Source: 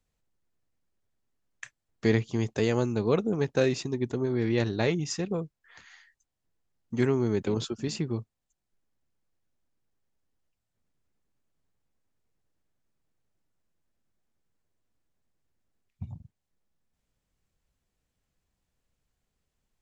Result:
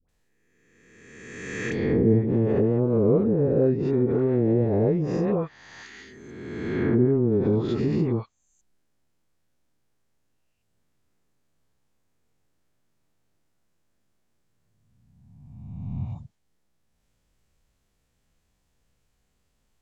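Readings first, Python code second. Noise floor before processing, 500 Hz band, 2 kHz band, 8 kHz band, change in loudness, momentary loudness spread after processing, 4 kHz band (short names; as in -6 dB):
-83 dBFS, +6.0 dB, -0.5 dB, n/a, +5.0 dB, 16 LU, -8.5 dB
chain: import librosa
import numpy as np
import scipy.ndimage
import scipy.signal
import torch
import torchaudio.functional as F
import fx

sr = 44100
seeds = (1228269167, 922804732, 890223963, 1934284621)

y = fx.spec_swells(x, sr, rise_s=1.72)
y = fx.dispersion(y, sr, late='highs', ms=89.0, hz=810.0)
y = fx.env_lowpass_down(y, sr, base_hz=440.0, full_db=-20.5)
y = y * librosa.db_to_amplitude(4.5)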